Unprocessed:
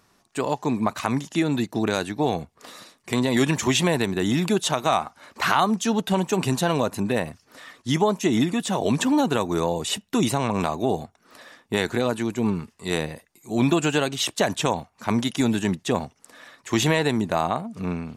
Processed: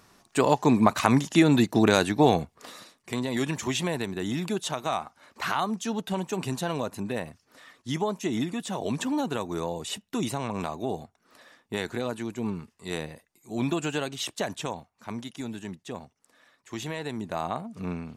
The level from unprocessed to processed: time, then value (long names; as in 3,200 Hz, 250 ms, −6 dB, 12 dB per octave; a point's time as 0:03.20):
0:02.28 +3.5 dB
0:03.20 −7.5 dB
0:14.30 −7.5 dB
0:15.29 −14 dB
0:16.89 −14 dB
0:17.63 −5 dB